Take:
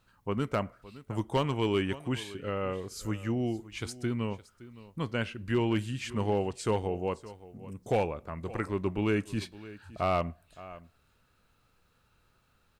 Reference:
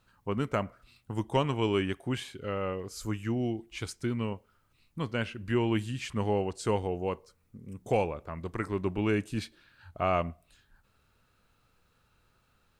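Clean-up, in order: clip repair -19.5 dBFS; inverse comb 0.566 s -18 dB

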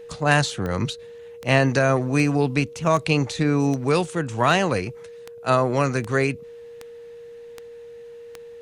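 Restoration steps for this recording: de-click; notch 470 Hz, Q 30

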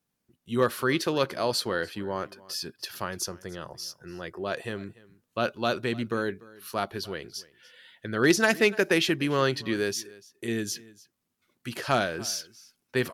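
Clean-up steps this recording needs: clip repair -11.5 dBFS; inverse comb 0.293 s -21.5 dB

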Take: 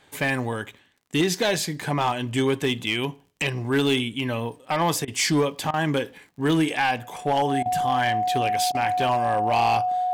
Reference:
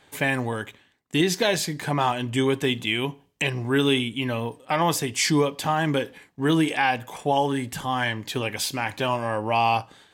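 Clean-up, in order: clip repair -15 dBFS; de-click; notch 730 Hz, Q 30; interpolate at 5.05/5.71/7.63/8.72, 26 ms

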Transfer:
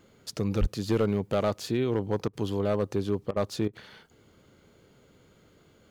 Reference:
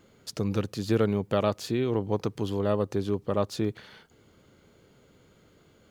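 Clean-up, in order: clip repair -17.5 dBFS; 0.6–0.72 HPF 140 Hz 24 dB/oct; interpolate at 2.28/3.31/3.68, 51 ms

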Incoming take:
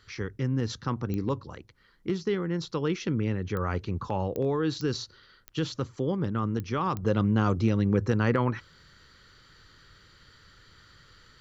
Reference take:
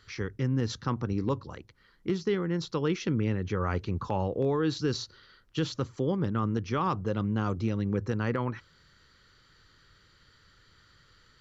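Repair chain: de-click; gain 0 dB, from 7.03 s -5 dB

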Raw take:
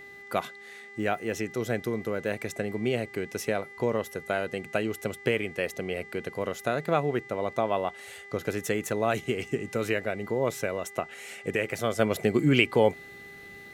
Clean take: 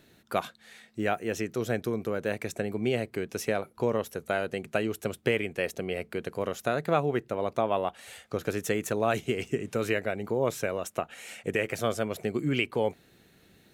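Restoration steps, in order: de-hum 400.8 Hz, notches 22; notch 2000 Hz, Q 30; gain 0 dB, from 11.99 s -6 dB

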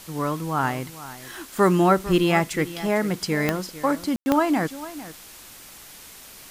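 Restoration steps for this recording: de-click; room tone fill 4.16–4.26; noise print and reduce 23 dB; inverse comb 0.45 s -15.5 dB

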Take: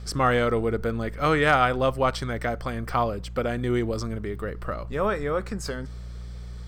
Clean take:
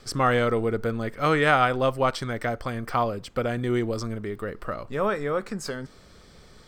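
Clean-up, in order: clip repair -7.5 dBFS; de-hum 59.6 Hz, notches 3

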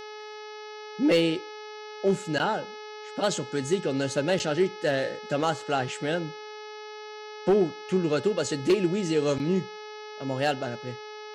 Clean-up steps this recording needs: clip repair -15 dBFS; de-hum 425.2 Hz, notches 14

